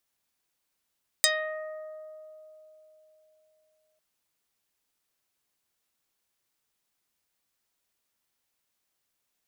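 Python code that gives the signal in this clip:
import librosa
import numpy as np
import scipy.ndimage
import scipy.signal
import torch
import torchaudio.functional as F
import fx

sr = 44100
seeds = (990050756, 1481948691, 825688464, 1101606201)

y = fx.pluck(sr, length_s=2.75, note=75, decay_s=3.82, pick=0.44, brightness='dark')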